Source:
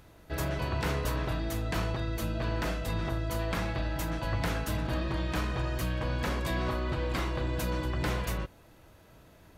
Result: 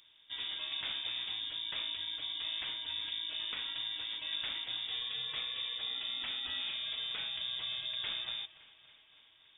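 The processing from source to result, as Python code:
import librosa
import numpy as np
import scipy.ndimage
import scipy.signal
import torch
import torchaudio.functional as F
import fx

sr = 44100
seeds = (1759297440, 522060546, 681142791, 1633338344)

y = fx.echo_thinned(x, sr, ms=283, feedback_pct=70, hz=150.0, wet_db=-18.0)
y = fx.freq_invert(y, sr, carrier_hz=3600)
y = y * librosa.db_to_amplitude(-9.0)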